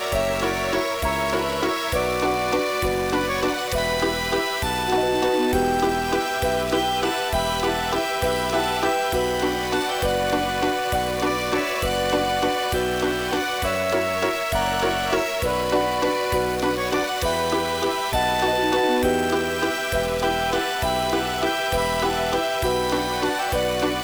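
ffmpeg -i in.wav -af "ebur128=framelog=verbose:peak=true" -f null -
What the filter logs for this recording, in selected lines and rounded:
Integrated loudness:
  I:         -22.4 LUFS
  Threshold: -32.4 LUFS
Loudness range:
  LRA:         0.9 LU
  Threshold: -42.3 LUFS
  LRA low:   -22.7 LUFS
  LRA high:  -21.8 LUFS
True peak:
  Peak:       -8.9 dBFS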